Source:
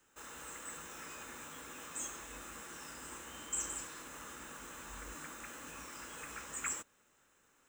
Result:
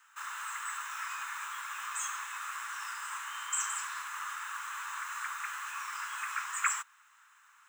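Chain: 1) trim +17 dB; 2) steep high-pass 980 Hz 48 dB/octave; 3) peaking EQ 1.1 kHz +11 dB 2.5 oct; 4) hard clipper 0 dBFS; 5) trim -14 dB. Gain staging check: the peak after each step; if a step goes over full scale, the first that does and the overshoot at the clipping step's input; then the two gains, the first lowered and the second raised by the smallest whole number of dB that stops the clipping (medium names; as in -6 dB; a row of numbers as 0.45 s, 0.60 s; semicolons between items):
-8.0 dBFS, -8.0 dBFS, -2.0 dBFS, -2.0 dBFS, -16.0 dBFS; nothing clips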